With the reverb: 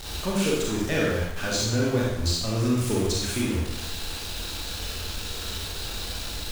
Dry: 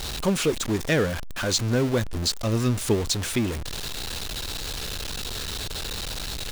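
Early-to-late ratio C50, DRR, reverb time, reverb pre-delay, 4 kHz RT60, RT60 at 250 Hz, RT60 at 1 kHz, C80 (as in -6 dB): -1.0 dB, -5.0 dB, 0.90 s, 26 ms, 0.80 s, 0.90 s, 0.85 s, 3.0 dB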